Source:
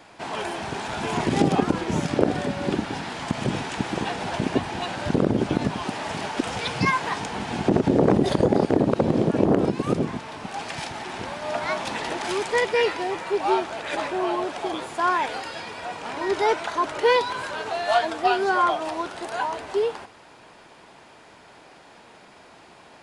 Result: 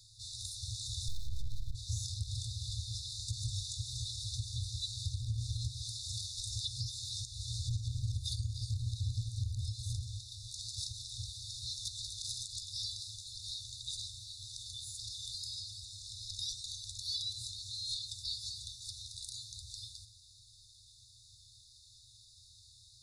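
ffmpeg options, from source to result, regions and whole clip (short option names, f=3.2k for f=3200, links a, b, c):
-filter_complex "[0:a]asettb=1/sr,asplit=3[a][b][c];[a]atrim=end=1.084[d];[b]atrim=start=1.08:end=1.75,asetpts=PTS-STARTPTS,afade=t=in:d=0.004:c=qsin,afade=t=out:st=0.666:d=0.004:c=qsin,lowpass=f=1.2k:p=1,aeval=exprs='abs(val(0))':c=same[e];[c]atrim=start=1.746[f];[d][e]acrossfade=d=0.004:c1=hsin:c2=qsin[g];[g][f]acrossfade=d=0.004:c1=qsin:c2=hsin,afftfilt=real='re*(1-between(b*sr/4096,120,3500))':imag='im*(1-between(b*sr/4096,120,3500))':win_size=4096:overlap=0.75,alimiter=level_in=3.5dB:limit=-24dB:level=0:latency=1:release=184,volume=-3.5dB,volume=1dB"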